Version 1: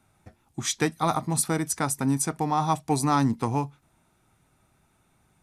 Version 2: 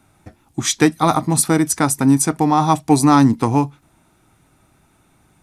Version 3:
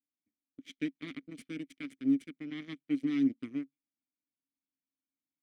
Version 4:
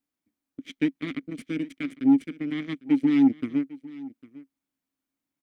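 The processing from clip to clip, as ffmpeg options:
-af "equalizer=f=300:w=4.8:g=6,volume=8.5dB"
-filter_complex "[0:a]aeval=exprs='0.891*(cos(1*acos(clip(val(0)/0.891,-1,1)))-cos(1*PI/2))+0.282*(cos(2*acos(clip(val(0)/0.891,-1,1)))-cos(2*PI/2))+0.126*(cos(3*acos(clip(val(0)/0.891,-1,1)))-cos(3*PI/2))+0.0794*(cos(7*acos(clip(val(0)/0.891,-1,1)))-cos(7*PI/2))':c=same,asoftclip=type=tanh:threshold=-2.5dB,asplit=3[a][b][c];[a]bandpass=f=270:t=q:w=8,volume=0dB[d];[b]bandpass=f=2.29k:t=q:w=8,volume=-6dB[e];[c]bandpass=f=3.01k:t=q:w=8,volume=-9dB[f];[d][e][f]amix=inputs=3:normalize=0,volume=-7.5dB"
-filter_complex "[0:a]asplit=2[a][b];[b]adynamicsmooth=sensitivity=5.5:basefreq=2.9k,volume=-1dB[c];[a][c]amix=inputs=2:normalize=0,asoftclip=type=tanh:threshold=-16dB,aecho=1:1:802:0.106,volume=5.5dB"

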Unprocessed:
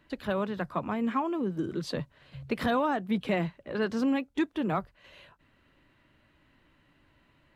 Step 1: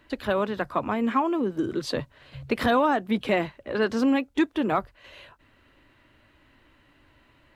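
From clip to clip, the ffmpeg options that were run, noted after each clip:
-af "equalizer=f=170:t=o:w=0.42:g=-11,volume=6dB"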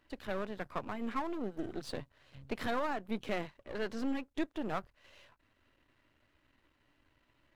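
-af "aeval=exprs='if(lt(val(0),0),0.251*val(0),val(0))':c=same,volume=-9dB"

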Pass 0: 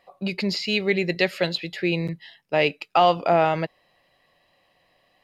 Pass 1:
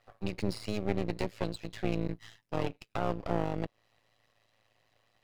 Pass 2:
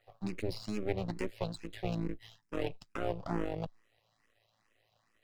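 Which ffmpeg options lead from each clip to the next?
-filter_complex "[0:a]tremolo=f=110:d=0.824,acrossover=split=490[a][b];[b]acompressor=threshold=-38dB:ratio=4[c];[a][c]amix=inputs=2:normalize=0,aeval=exprs='max(val(0),0)':c=same"
-filter_complex "[0:a]asplit=2[a][b];[b]afreqshift=2.3[c];[a][c]amix=inputs=2:normalize=1"

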